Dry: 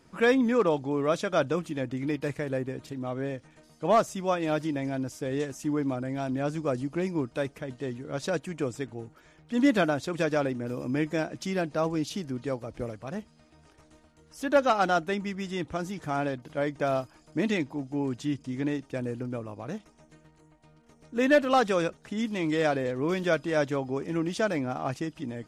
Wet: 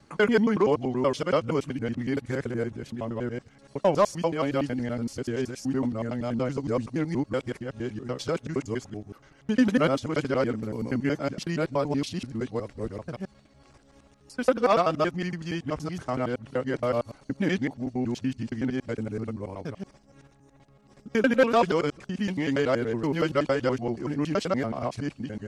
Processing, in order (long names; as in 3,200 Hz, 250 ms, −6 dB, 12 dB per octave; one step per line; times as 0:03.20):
reversed piece by piece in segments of 94 ms
pitch shifter −2 semitones
level +1.5 dB